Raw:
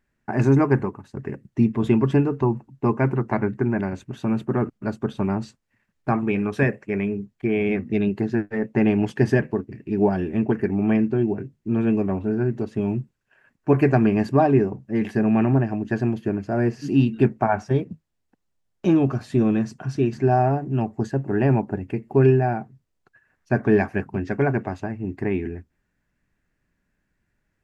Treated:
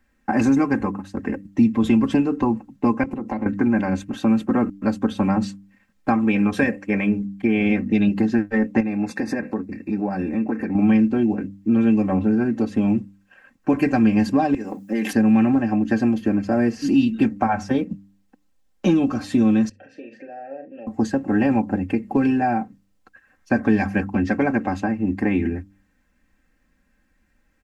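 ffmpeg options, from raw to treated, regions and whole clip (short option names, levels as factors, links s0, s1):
-filter_complex "[0:a]asettb=1/sr,asplit=3[s0][s1][s2];[s0]atrim=end=3.034[s3];[s1]atrim=start=3.03:end=3.46,asetpts=PTS-STARTPTS,afade=t=in:d=0.004:c=qsin,afade=t=out:st=0.426:d=0.004:c=qsin,equalizer=f=1500:t=o:w=0.79:g=-12,acompressor=threshold=0.0447:ratio=12:attack=3.2:release=140:knee=1:detection=peak[s4];[s2]atrim=start=3.456[s5];[s3][s4]acrossfade=d=0.004:c1=hsin:c2=qsin[s6];[s6][s5]acrossfade=d=0.004:c1=qsin:c2=hsin,asettb=1/sr,asplit=3[s7][s8][s9];[s7]atrim=end=8.804[s10];[s8]atrim=start=8.8:end=10.75,asetpts=PTS-STARTPTS,afade=t=in:d=0.004:c=qsin,afade=t=out:st=1.946:d=0.004:c=qsin,asuperstop=centerf=3100:order=20:qfactor=4.3,acompressor=threshold=0.0398:ratio=3:attack=3.2:release=140:knee=1:detection=peak,lowshelf=f=68:g=-9.5[s11];[s9]atrim=start=10.746[s12];[s10][s11]acrossfade=d=0.004:c1=hsin:c2=qsin[s13];[s13][s12]acrossfade=d=0.004:c1=qsin:c2=hsin,asettb=1/sr,asplit=3[s14][s15][s16];[s14]atrim=end=14.544[s17];[s15]atrim=start=14.54:end=15.13,asetpts=PTS-STARTPTS,afade=t=in:d=0.004:c=qsin,afade=t=out:st=0.586:d=0.004:c=qsin,highpass=230,aemphasis=mode=production:type=75kf,acompressor=threshold=0.0501:ratio=12:attack=3.2:release=140:knee=1:detection=peak[s18];[s16]atrim=start=15.126[s19];[s17][s18]acrossfade=d=0.004:c1=hsin:c2=qsin[s20];[s20][s19]acrossfade=d=0.004:c1=qsin:c2=hsin,asettb=1/sr,asplit=3[s21][s22][s23];[s21]atrim=end=19.694[s24];[s22]atrim=start=19.69:end=20.87,asetpts=PTS-STARTPTS,afade=t=in:d=0.004:c=qsin,afade=t=out:st=1.176:d=0.004:c=qsin,acompressor=threshold=0.0708:ratio=12:attack=3.2:release=140:knee=1:detection=peak,asplit=3[s25][s26][s27];[s25]bandpass=f=530:t=q:w=8,volume=1[s28];[s26]bandpass=f=1840:t=q:w=8,volume=0.501[s29];[s27]bandpass=f=2480:t=q:w=8,volume=0.355[s30];[s28][s29][s30]amix=inputs=3:normalize=0,asplit=2[s31][s32];[s32]adelay=41,volume=0.335[s33];[s31][s33]amix=inputs=2:normalize=0,atrim=end_sample=52038[s34];[s23]atrim=start=20.866[s35];[s24][s34]acrossfade=d=0.004:c1=hsin:c2=qsin[s36];[s36][s35]acrossfade=d=0.004:c1=qsin:c2=hsin,aecho=1:1:3.8:0.88,bandreject=f=98.48:t=h:w=4,bandreject=f=196.96:t=h:w=4,bandreject=f=295.44:t=h:w=4,acrossover=split=160|3000[s37][s38][s39];[s38]acompressor=threshold=0.0708:ratio=6[s40];[s37][s40][s39]amix=inputs=3:normalize=0,volume=1.88"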